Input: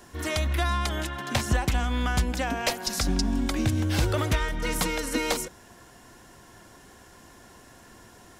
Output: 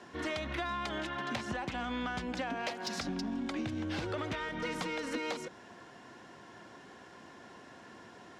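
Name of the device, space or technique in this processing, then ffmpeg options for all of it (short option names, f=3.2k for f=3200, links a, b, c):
AM radio: -af "highpass=160,lowpass=4k,acompressor=threshold=-32dB:ratio=6,asoftclip=type=tanh:threshold=-26.5dB"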